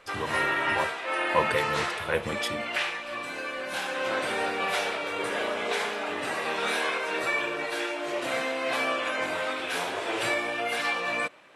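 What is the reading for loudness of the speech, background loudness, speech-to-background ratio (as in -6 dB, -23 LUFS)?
-32.0 LUFS, -28.5 LUFS, -3.5 dB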